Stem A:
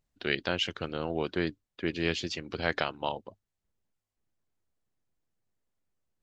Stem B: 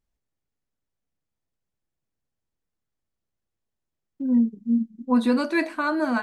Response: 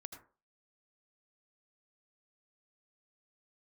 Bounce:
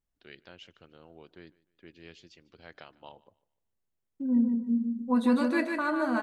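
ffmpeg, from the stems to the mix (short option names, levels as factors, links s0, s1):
-filter_complex "[0:a]volume=0.2,afade=t=in:st=2.69:d=0.79:silence=0.446684,asplit=3[s0][s1][s2];[s1]volume=0.1[s3];[s2]volume=0.0794[s4];[1:a]equalizer=f=4700:t=o:w=0.68:g=-4,bandreject=f=2400:w=20,volume=0.562,asplit=2[s5][s6];[s6]volume=0.562[s7];[2:a]atrim=start_sample=2205[s8];[s3][s8]afir=irnorm=-1:irlink=0[s9];[s4][s7]amix=inputs=2:normalize=0,aecho=0:1:149|298|447|596:1|0.3|0.09|0.027[s10];[s0][s5][s9][s10]amix=inputs=4:normalize=0"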